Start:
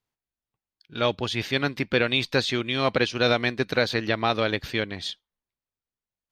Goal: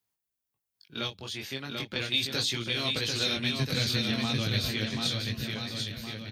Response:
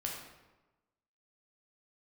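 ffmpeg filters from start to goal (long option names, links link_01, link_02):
-filter_complex "[0:a]highpass=62,aemphasis=mode=production:type=50kf,asettb=1/sr,asplit=3[link_01][link_02][link_03];[link_01]atrim=end=1.074[link_04];[link_02]atrim=start=1.07:end=1.96,asetpts=PTS-STARTPTS,afade=type=in:duration=0.004:curve=qsin,afade=type=out:start_time=0.886:duration=0.004:curve=qsin,acompressor=threshold=-32dB:ratio=3[link_05];[link_03]atrim=start=1.956[link_06];[link_04][link_05]acrossfade=duration=0.004:curve1=hsin:curve2=qsin[link_07];[link_07][link_06]acrossfade=duration=0.004:curve1=qsin:curve2=hsin,asettb=1/sr,asplit=3[link_08][link_09][link_10];[link_08]atrim=end=3.364[link_11];[link_09]atrim=start=3.36:end=4.69,asetpts=PTS-STARTPTS,afade=type=in:duration=0.004:curve=qsin,afade=type=out:start_time=1.326:duration=0.004:curve=qsin,lowshelf=frequency=300:width_type=q:width=1.5:gain=7.5[link_12];[link_10]atrim=start=4.686[link_13];[link_11][link_12]acrossfade=duration=0.004:curve1=hsin:curve2=qsin[link_14];[link_14][link_13]acrossfade=duration=0.004:curve1=qsin:curve2=hsin,acrossover=split=170|3000[link_15][link_16][link_17];[link_16]acompressor=threshold=-32dB:ratio=6[link_18];[link_15][link_18][link_17]amix=inputs=3:normalize=0,flanger=delay=17.5:depth=5.2:speed=0.38,aecho=1:1:740|1332|1806|2184|2488:0.631|0.398|0.251|0.158|0.1"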